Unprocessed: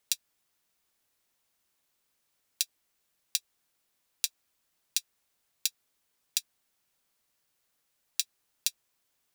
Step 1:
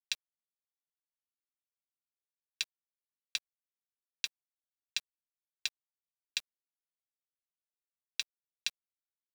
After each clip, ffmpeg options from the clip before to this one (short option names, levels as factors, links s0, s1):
-af "lowpass=2600,acontrast=28,acrusher=bits=7:mix=0:aa=0.000001,volume=1.19"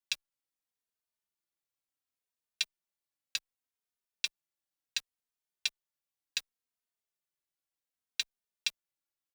-filter_complex "[0:a]asplit=2[s0][s1];[s1]adelay=3,afreqshift=-0.68[s2];[s0][s2]amix=inputs=2:normalize=1,volume=1.78"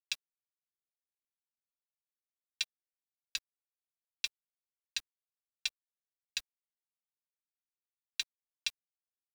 -af "bandreject=f=60:t=h:w=6,bandreject=f=120:t=h:w=6,bandreject=f=180:t=h:w=6,bandreject=f=240:t=h:w=6,bandreject=f=300:t=h:w=6,bandreject=f=360:t=h:w=6,bandreject=f=420:t=h:w=6,bandreject=f=480:t=h:w=6,bandreject=f=540:t=h:w=6,bandreject=f=600:t=h:w=6,asubboost=boost=5:cutoff=83,acrusher=bits=8:mix=0:aa=0.5,volume=0.75"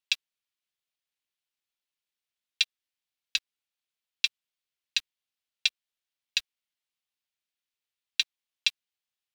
-af "equalizer=f=3100:w=0.76:g=11.5"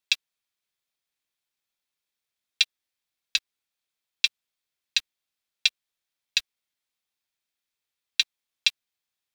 -af "bandreject=f=2900:w=14,volume=1.58"